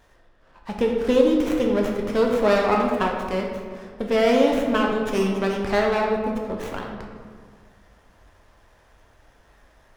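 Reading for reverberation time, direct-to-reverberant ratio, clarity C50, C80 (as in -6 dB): 1.8 s, 0.0 dB, 3.0 dB, 4.5 dB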